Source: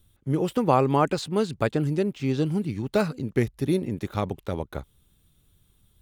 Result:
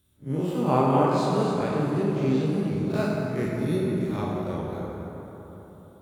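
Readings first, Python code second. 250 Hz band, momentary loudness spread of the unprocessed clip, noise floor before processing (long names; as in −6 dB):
+1.0 dB, 9 LU, −64 dBFS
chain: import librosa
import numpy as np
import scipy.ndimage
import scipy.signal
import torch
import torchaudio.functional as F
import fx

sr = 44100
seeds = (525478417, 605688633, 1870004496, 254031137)

y = fx.spec_blur(x, sr, span_ms=94.0)
y = scipy.signal.sosfilt(scipy.signal.butter(2, 77.0, 'highpass', fs=sr, output='sos'), y)
y = fx.rev_plate(y, sr, seeds[0], rt60_s=3.9, hf_ratio=0.45, predelay_ms=0, drr_db=-3.5)
y = y * 10.0 ** (-2.5 / 20.0)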